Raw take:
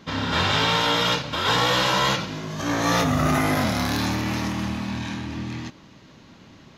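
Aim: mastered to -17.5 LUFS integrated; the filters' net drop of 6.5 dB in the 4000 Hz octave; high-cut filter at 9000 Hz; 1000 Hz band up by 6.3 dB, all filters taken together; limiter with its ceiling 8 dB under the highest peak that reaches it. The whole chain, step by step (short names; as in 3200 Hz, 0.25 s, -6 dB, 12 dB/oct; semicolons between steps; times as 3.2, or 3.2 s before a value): LPF 9000 Hz; bell 1000 Hz +8 dB; bell 4000 Hz -9 dB; gain +6.5 dB; limiter -7 dBFS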